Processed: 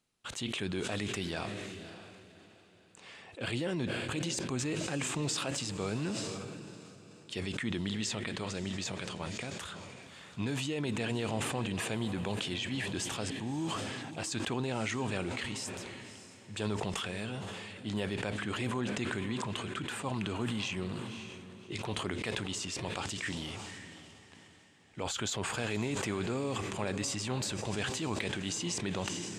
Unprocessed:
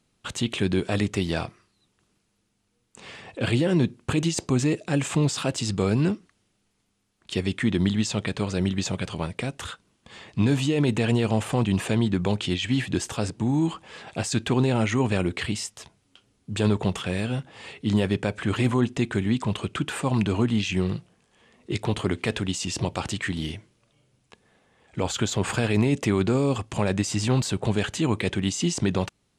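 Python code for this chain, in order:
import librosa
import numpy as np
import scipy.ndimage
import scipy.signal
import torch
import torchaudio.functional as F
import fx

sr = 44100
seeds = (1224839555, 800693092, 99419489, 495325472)

p1 = fx.low_shelf(x, sr, hz=420.0, db=-7.5)
p2 = fx.over_compress(p1, sr, threshold_db=-25.0, ratio=-1.0)
p3 = p2 + fx.echo_diffused(p2, sr, ms=576, feedback_pct=41, wet_db=-12.5, dry=0)
p4 = fx.sustainer(p3, sr, db_per_s=22.0)
y = p4 * 10.0 ** (-8.0 / 20.0)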